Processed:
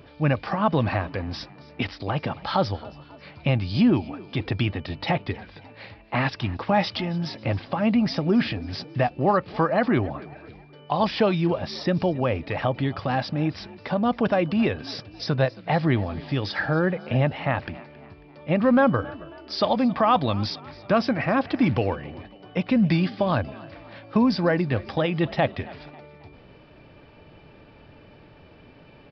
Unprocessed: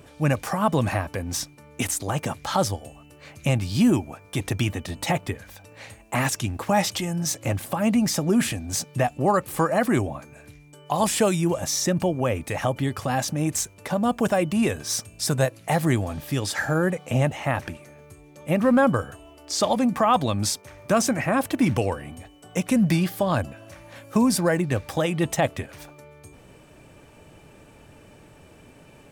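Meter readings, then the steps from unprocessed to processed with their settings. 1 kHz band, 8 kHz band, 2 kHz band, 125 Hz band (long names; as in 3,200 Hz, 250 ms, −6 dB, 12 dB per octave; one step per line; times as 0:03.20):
0.0 dB, below −25 dB, 0.0 dB, 0.0 dB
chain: echo with shifted repeats 272 ms, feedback 46%, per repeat +46 Hz, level −20.5 dB
downsampling to 11,025 Hz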